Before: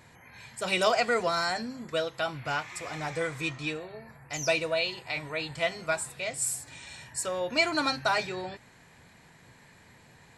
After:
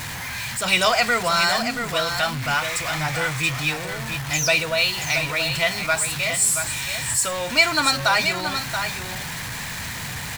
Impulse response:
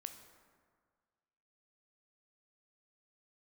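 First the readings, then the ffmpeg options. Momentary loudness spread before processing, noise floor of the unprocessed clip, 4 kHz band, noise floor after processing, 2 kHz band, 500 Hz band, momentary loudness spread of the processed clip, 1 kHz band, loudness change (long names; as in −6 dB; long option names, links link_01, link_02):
13 LU, −57 dBFS, +11.5 dB, −31 dBFS, +10.5 dB, +3.5 dB, 11 LU, +8.0 dB, +8.5 dB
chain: -af "aeval=exprs='val(0)+0.5*0.02*sgn(val(0))':channel_layout=same,equalizer=frequency=400:width_type=o:width=1.6:gain=-11.5,aecho=1:1:679:0.422,volume=9dB"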